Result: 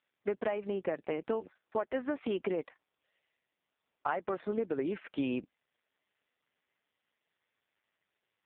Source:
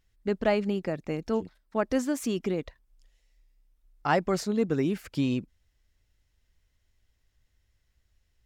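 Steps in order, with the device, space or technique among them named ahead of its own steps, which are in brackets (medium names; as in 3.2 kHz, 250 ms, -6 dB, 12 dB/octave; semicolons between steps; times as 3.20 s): voicemail (band-pass 410–2900 Hz; compression 12:1, threshold -34 dBFS, peak gain reduction 15 dB; trim +6 dB; AMR-NB 5.15 kbps 8 kHz)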